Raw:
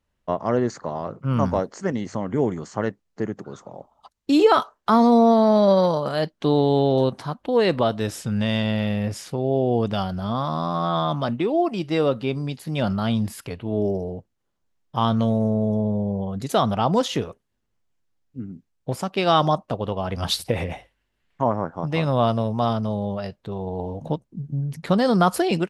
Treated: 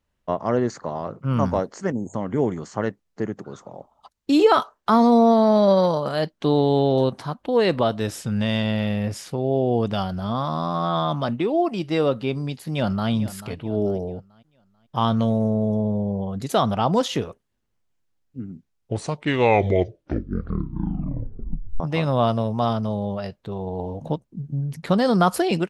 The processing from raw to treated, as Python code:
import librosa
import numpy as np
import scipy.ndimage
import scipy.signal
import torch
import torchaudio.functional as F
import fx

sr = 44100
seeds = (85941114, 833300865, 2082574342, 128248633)

y = fx.spec_erase(x, sr, start_s=1.92, length_s=0.22, low_hz=970.0, high_hz=6400.0)
y = fx.echo_throw(y, sr, start_s=12.68, length_s=0.42, ms=440, feedback_pct=40, wet_db=-15.0)
y = fx.edit(y, sr, fx.tape_stop(start_s=18.47, length_s=3.33), tone=tone)